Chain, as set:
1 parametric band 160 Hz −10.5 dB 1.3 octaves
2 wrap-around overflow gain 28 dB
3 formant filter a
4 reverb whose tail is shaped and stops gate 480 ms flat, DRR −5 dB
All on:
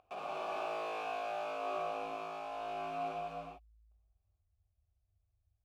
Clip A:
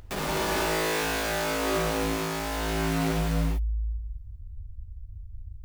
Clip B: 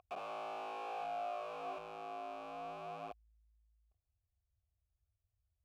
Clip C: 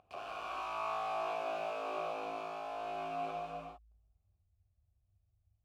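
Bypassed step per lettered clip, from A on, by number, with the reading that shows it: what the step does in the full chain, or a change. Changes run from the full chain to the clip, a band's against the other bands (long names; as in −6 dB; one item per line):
3, 125 Hz band +13.5 dB
4, 2 kHz band −1.5 dB
1, change in momentary loudness spread +3 LU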